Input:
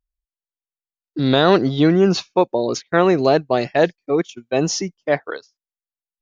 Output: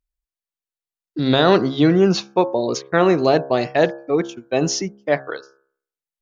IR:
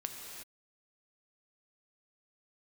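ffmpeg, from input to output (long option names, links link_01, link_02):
-af "bandreject=frequency=68.11:width_type=h:width=4,bandreject=frequency=136.22:width_type=h:width=4,bandreject=frequency=204.33:width_type=h:width=4,bandreject=frequency=272.44:width_type=h:width=4,bandreject=frequency=340.55:width_type=h:width=4,bandreject=frequency=408.66:width_type=h:width=4,bandreject=frequency=476.77:width_type=h:width=4,bandreject=frequency=544.88:width_type=h:width=4,bandreject=frequency=612.99:width_type=h:width=4,bandreject=frequency=681.1:width_type=h:width=4,bandreject=frequency=749.21:width_type=h:width=4,bandreject=frequency=817.32:width_type=h:width=4,bandreject=frequency=885.43:width_type=h:width=4,bandreject=frequency=953.54:width_type=h:width=4,bandreject=frequency=1021.65:width_type=h:width=4,bandreject=frequency=1089.76:width_type=h:width=4,bandreject=frequency=1157.87:width_type=h:width=4,bandreject=frequency=1225.98:width_type=h:width=4,bandreject=frequency=1294.09:width_type=h:width=4,bandreject=frequency=1362.2:width_type=h:width=4,bandreject=frequency=1430.31:width_type=h:width=4,bandreject=frequency=1498.42:width_type=h:width=4,bandreject=frequency=1566.53:width_type=h:width=4,bandreject=frequency=1634.64:width_type=h:width=4,bandreject=frequency=1702.75:width_type=h:width=4"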